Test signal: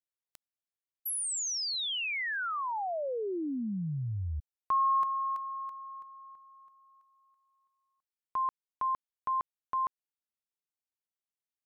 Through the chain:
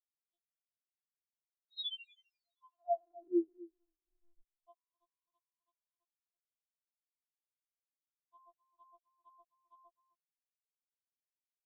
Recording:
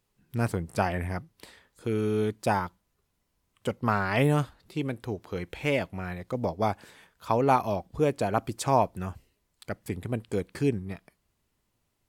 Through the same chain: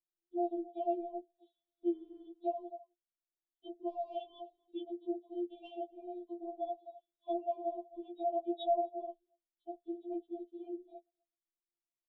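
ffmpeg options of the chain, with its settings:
ffmpeg -i in.wav -filter_complex "[0:a]agate=range=-7dB:threshold=-50dB:ratio=16:release=183:detection=peak,aresample=8000,aresample=44100,lowshelf=frequency=310:width_type=q:width=1.5:gain=-8,asplit=2[link_01][link_02];[link_02]adelay=256.6,volume=-20dB,highshelf=frequency=4000:gain=-5.77[link_03];[link_01][link_03]amix=inputs=2:normalize=0,afftdn=noise_reduction=17:noise_floor=-41,acrossover=split=240[link_04][link_05];[link_05]acompressor=threshold=-37dB:ratio=5:attack=34:release=36:knee=2.83:detection=peak[link_06];[link_04][link_06]amix=inputs=2:normalize=0,asuperstop=centerf=1600:order=12:qfactor=0.63,afftfilt=real='re*4*eq(mod(b,16),0)':imag='im*4*eq(mod(b,16),0)':win_size=2048:overlap=0.75,volume=1dB" out.wav

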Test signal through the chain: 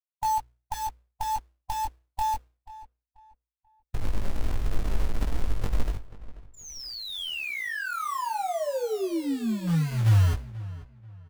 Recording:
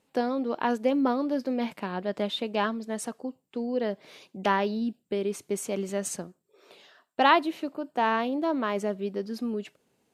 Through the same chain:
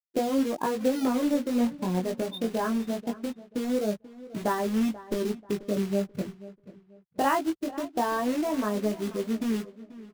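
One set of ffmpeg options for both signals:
ffmpeg -i in.wav -filter_complex "[0:a]aemphasis=mode=reproduction:type=riaa,afftfilt=real='re*gte(hypot(re,im),0.0631)':imag='im*gte(hypot(re,im),0.0631)':win_size=1024:overlap=0.75,bandreject=frequency=60:width_type=h:width=6,bandreject=frequency=120:width_type=h:width=6,asubboost=boost=6.5:cutoff=80,acompressor=threshold=-34dB:ratio=2,acrusher=bits=3:mode=log:mix=0:aa=0.000001,flanger=delay=18:depth=4:speed=0.21,asplit=2[link_01][link_02];[link_02]adelay=486,lowpass=frequency=2800:poles=1,volume=-17dB,asplit=2[link_03][link_04];[link_04]adelay=486,lowpass=frequency=2800:poles=1,volume=0.31,asplit=2[link_05][link_06];[link_06]adelay=486,lowpass=frequency=2800:poles=1,volume=0.31[link_07];[link_01][link_03][link_05][link_07]amix=inputs=4:normalize=0,volume=7.5dB" out.wav

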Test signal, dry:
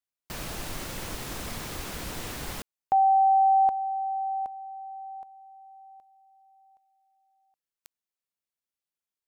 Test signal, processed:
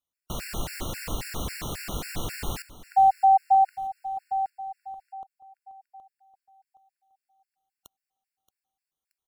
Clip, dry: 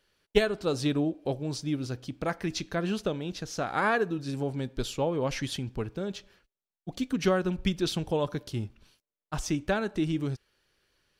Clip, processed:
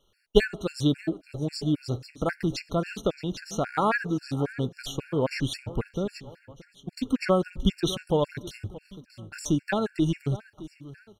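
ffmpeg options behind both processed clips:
ffmpeg -i in.wav -af "lowshelf=frequency=120:gain=5.5,aecho=1:1:626|1252|1878|2504:0.141|0.0607|0.0261|0.0112,afftfilt=real='re*gt(sin(2*PI*3.7*pts/sr)*(1-2*mod(floor(b*sr/1024/1400),2)),0)':imag='im*gt(sin(2*PI*3.7*pts/sr)*(1-2*mod(floor(b*sr/1024/1400),2)),0)':win_size=1024:overlap=0.75,volume=4dB" out.wav

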